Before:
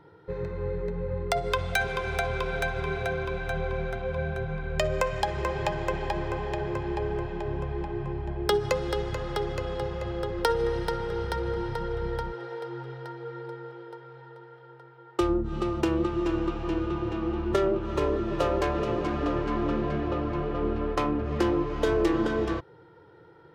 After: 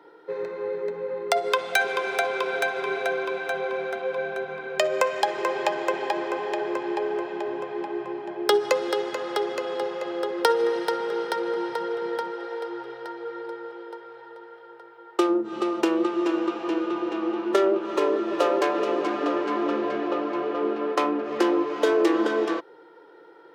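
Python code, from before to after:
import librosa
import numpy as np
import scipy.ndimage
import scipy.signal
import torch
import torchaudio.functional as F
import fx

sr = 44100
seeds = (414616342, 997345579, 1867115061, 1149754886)

y = scipy.signal.sosfilt(scipy.signal.butter(4, 290.0, 'highpass', fs=sr, output='sos'), x)
y = y * 10.0 ** (4.5 / 20.0)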